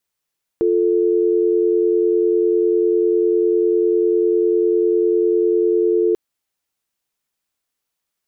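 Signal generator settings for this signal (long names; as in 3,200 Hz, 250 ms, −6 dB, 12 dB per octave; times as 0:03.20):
call progress tone dial tone, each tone −16 dBFS 5.54 s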